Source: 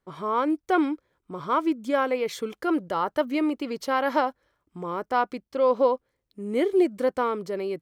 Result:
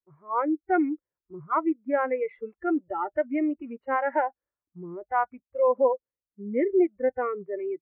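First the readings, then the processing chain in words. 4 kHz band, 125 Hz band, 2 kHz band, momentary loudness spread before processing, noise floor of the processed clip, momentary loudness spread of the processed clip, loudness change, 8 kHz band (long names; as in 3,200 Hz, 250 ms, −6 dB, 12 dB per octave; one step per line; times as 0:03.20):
below −25 dB, −5.5 dB, −2.0 dB, 10 LU, below −85 dBFS, 12 LU, −1.5 dB, below −30 dB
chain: adaptive Wiener filter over 9 samples
noise reduction from a noise print of the clip's start 23 dB
elliptic low-pass filter 2,100 Hz, stop band 60 dB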